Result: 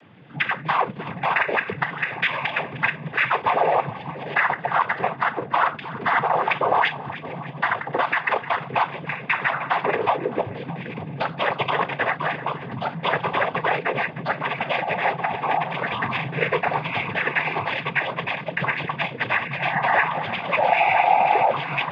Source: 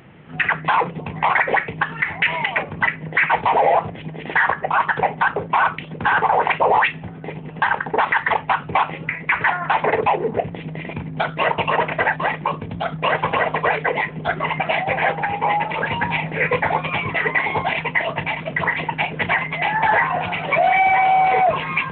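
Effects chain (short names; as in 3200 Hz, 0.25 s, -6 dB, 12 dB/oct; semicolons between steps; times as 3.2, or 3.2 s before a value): split-band echo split 810 Hz, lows 0.621 s, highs 0.306 s, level -15 dB; noise vocoder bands 16; gain -3 dB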